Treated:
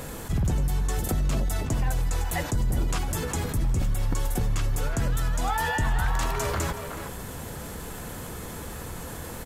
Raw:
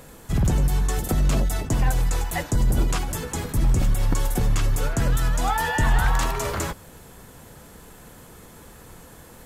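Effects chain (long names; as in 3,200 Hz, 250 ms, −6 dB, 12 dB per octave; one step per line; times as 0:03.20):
parametric band 79 Hz +4 dB
far-end echo of a speakerphone 370 ms, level −15 dB
envelope flattener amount 50%
level −7 dB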